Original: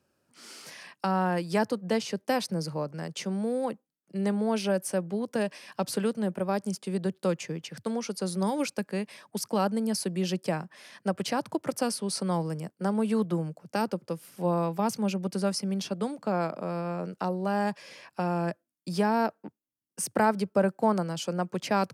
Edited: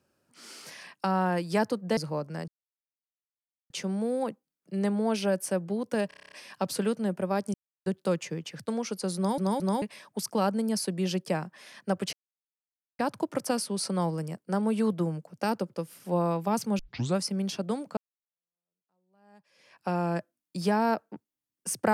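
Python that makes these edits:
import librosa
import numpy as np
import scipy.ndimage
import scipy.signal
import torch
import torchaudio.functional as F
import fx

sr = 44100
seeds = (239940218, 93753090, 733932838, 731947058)

y = fx.edit(x, sr, fx.cut(start_s=1.97, length_s=0.64),
    fx.insert_silence(at_s=3.12, length_s=1.22),
    fx.stutter(start_s=5.5, slice_s=0.03, count=9),
    fx.silence(start_s=6.72, length_s=0.32),
    fx.stutter_over(start_s=8.34, slice_s=0.22, count=3),
    fx.insert_silence(at_s=11.31, length_s=0.86),
    fx.tape_start(start_s=15.11, length_s=0.37),
    fx.fade_in_span(start_s=16.29, length_s=1.91, curve='exp'), tone=tone)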